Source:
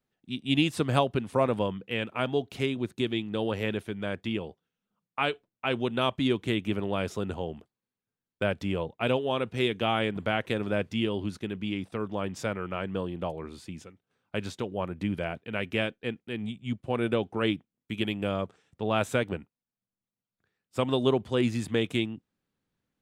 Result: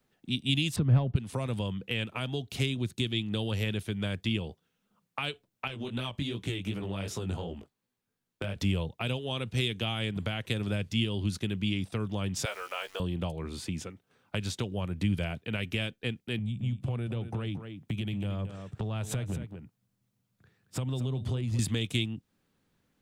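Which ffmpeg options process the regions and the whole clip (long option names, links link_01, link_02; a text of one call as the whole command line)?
ffmpeg -i in.wav -filter_complex "[0:a]asettb=1/sr,asplit=3[link_01][link_02][link_03];[link_01]atrim=end=0.764[link_04];[link_02]atrim=start=0.76:end=1.16,asetpts=PTS-STARTPTS,afade=type=in:duration=0.004:curve=qsin,afade=type=out:start_time=0.396:duration=0.004:curve=qsin,lowpass=1400,acontrast=90,lowshelf=frequency=350:gain=5.5[link_05];[link_03]atrim=start=1.156[link_06];[link_04][link_05]acrossfade=duration=0.004:curve1=hsin:curve2=qsin[link_07];[link_07][link_06]acrossfade=duration=0.004:curve1=qsin:curve2=hsin,asettb=1/sr,asplit=3[link_08][link_09][link_10];[link_08]atrim=end=5.674[link_11];[link_09]atrim=start=5.67:end=8.56,asetpts=PTS-STARTPTS,afade=type=in:duration=0.004:curve=qsin,afade=type=out:start_time=2.886:duration=0.004:curve=qsin,acompressor=threshold=-29dB:ratio=5:attack=3.2:release=140:knee=1:detection=peak,flanger=delay=16:depth=5.1:speed=2.7[link_12];[link_10]atrim=start=8.556[link_13];[link_11][link_12]acrossfade=duration=0.004:curve1=hsin:curve2=qsin[link_14];[link_14][link_13]acrossfade=duration=0.004:curve1=qsin:curve2=hsin,asettb=1/sr,asplit=3[link_15][link_16][link_17];[link_15]atrim=end=12.454[link_18];[link_16]atrim=start=12.45:end=13,asetpts=PTS-STARTPTS,afade=type=in:duration=0.004:curve=qsin,afade=type=out:start_time=0.546:duration=0.004:curve=qsin,highpass=frequency=530:width=0.5412,highpass=frequency=530:width=1.3066,aeval=exprs='val(0)*gte(abs(val(0)),0.00211)':channel_layout=same,asplit=2[link_19][link_20];[link_20]adelay=15,volume=-5.5dB[link_21];[link_19][link_21]amix=inputs=2:normalize=0,atrim=end_sample=24255[link_22];[link_17]atrim=start=12.996[link_23];[link_18][link_22]acrossfade=duration=0.004:curve1=hsin:curve2=qsin[link_24];[link_24][link_23]acrossfade=duration=0.004:curve1=qsin:curve2=hsin,asettb=1/sr,asplit=3[link_25][link_26][link_27];[link_25]atrim=end=16.384[link_28];[link_26]atrim=start=16.38:end=21.59,asetpts=PTS-STARTPTS,afade=type=in:duration=0.004:curve=qsin,afade=type=out:start_time=5.206:duration=0.004:curve=qsin,equalizer=frequency=120:width=0.89:gain=12.5,acompressor=threshold=-36dB:ratio=6:attack=3.2:release=140:knee=1:detection=peak,aecho=1:1:225:0.266,atrim=end_sample=229761[link_29];[link_27]atrim=start=21.586[link_30];[link_28][link_29]acrossfade=duration=0.004:curve1=hsin:curve2=qsin[link_31];[link_31][link_30]acrossfade=duration=0.004:curve1=qsin:curve2=hsin,alimiter=limit=-19dB:level=0:latency=1:release=322,acrossover=split=160|3000[link_32][link_33][link_34];[link_33]acompressor=threshold=-47dB:ratio=4[link_35];[link_32][link_35][link_34]amix=inputs=3:normalize=0,volume=9dB" out.wav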